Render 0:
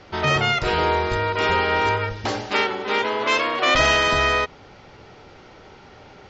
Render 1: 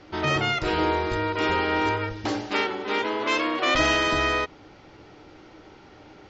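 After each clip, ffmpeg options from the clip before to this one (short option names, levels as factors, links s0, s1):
-af "equalizer=f=310:w=6.5:g=13,volume=0.596"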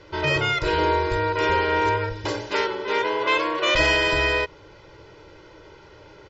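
-af "aecho=1:1:2:0.78"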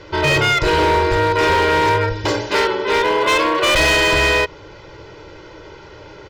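-af "volume=10,asoftclip=hard,volume=0.1,volume=2.66"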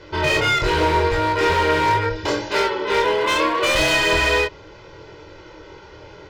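-af "flanger=delay=22.5:depth=4.1:speed=0.78"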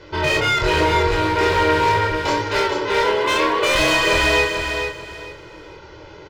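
-af "aecho=1:1:440|880|1320:0.501|0.125|0.0313"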